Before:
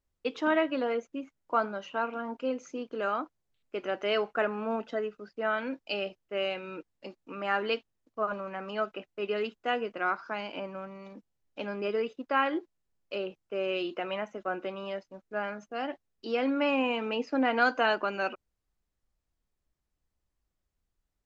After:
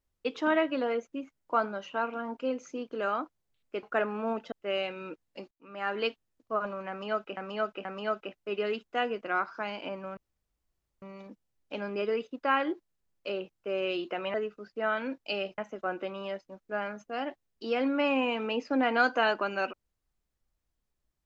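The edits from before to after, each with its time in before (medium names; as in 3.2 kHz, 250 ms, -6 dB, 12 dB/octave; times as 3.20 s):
3.83–4.26 s: delete
4.95–6.19 s: move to 14.20 s
7.18–7.73 s: fade in
8.56–9.04 s: loop, 3 plays
10.88 s: insert room tone 0.85 s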